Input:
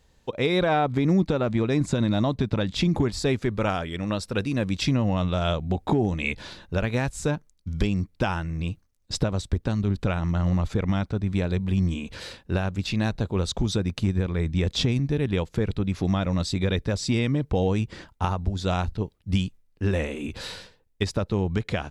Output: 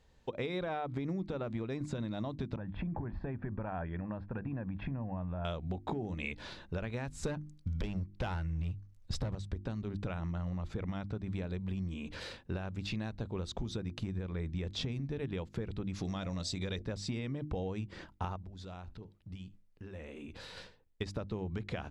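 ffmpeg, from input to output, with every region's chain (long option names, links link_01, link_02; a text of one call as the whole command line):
ffmpeg -i in.wav -filter_complex "[0:a]asettb=1/sr,asplit=3[link_01][link_02][link_03];[link_01]atrim=end=2.564[link_04];[link_02]atrim=start=2.56:end=5.45,asetpts=PTS-STARTPTS,afade=type=in:duration=0.004:curve=qsin,afade=type=out:start_time=2.886:duration=0.004:curve=qsin,lowpass=frequency=1800:width=0.5412,lowpass=frequency=1800:width=1.3066,acompressor=threshold=-26dB:ratio=6:attack=3.2:release=140:knee=1:detection=peak,aecho=1:1:1.2:0.42,atrim=end_sample=127449[link_05];[link_03]atrim=start=5.446[link_06];[link_04][link_05]acrossfade=duration=0.004:curve1=hsin:curve2=qsin[link_07];[link_07][link_06]acrossfade=duration=0.004:curve1=qsin:curve2=hsin,asettb=1/sr,asplit=3[link_08][link_09][link_10];[link_08]atrim=end=7.234[link_11];[link_09]atrim=start=7.23:end=9.35,asetpts=PTS-STARTPTS,afade=type=in:duration=0.004:curve=qsin,afade=type=out:start_time=2.116:duration=0.004:curve=qsin,asubboost=boost=5:cutoff=140,acontrast=69,volume=13dB,asoftclip=hard,volume=-13dB[link_12];[link_10]atrim=start=9.346[link_13];[link_11][link_12]acrossfade=duration=0.004:curve1=hsin:curve2=qsin[link_14];[link_14][link_13]acrossfade=duration=0.004:curve1=qsin:curve2=hsin,asettb=1/sr,asplit=3[link_15][link_16][link_17];[link_15]atrim=end=15.934[link_18];[link_16]atrim=start=15.93:end=16.82,asetpts=PTS-STARTPTS,afade=type=in:duration=0.004:curve=qsin,afade=type=out:start_time=0.886:duration=0.004:curve=qsin,equalizer=frequency=6700:width=0.66:gain=11.5,bandreject=frequency=76.01:width_type=h:width=4,bandreject=frequency=152.02:width_type=h:width=4,bandreject=frequency=228.03:width_type=h:width=4,bandreject=frequency=304.04:width_type=h:width=4,bandreject=frequency=380.05:width_type=h:width=4,bandreject=frequency=456.06:width_type=h:width=4,bandreject=frequency=532.07:width_type=h:width=4,bandreject=frequency=608.08:width_type=h:width=4,bandreject=frequency=684.09:width_type=h:width=4[link_19];[link_17]atrim=start=16.816[link_20];[link_18][link_19]acrossfade=duration=0.004:curve1=hsin:curve2=qsin[link_21];[link_21][link_20]acrossfade=duration=0.004:curve1=qsin:curve2=hsin,asettb=1/sr,asplit=3[link_22][link_23][link_24];[link_22]atrim=end=18.364[link_25];[link_23]atrim=start=18.36:end=20.57,asetpts=PTS-STARTPTS,afade=type=in:duration=0.004:curve=qsin,afade=type=out:start_time=2.206:duration=0.004:curve=qsin,acompressor=threshold=-39dB:ratio=6:attack=3.2:release=140:knee=1:detection=peak,aecho=1:1:75:0.0794,atrim=end_sample=97461[link_26];[link_24]atrim=start=20.566[link_27];[link_25][link_26]acrossfade=duration=0.004:curve1=hsin:curve2=qsin[link_28];[link_28][link_27]acrossfade=duration=0.004:curve1=qsin:curve2=hsin,lowpass=frequency=4000:poles=1,bandreject=frequency=50:width_type=h:width=6,bandreject=frequency=100:width_type=h:width=6,bandreject=frequency=150:width_type=h:width=6,bandreject=frequency=200:width_type=h:width=6,bandreject=frequency=250:width_type=h:width=6,bandreject=frequency=300:width_type=h:width=6,bandreject=frequency=350:width_type=h:width=6,acompressor=threshold=-30dB:ratio=6,volume=-4dB" out.wav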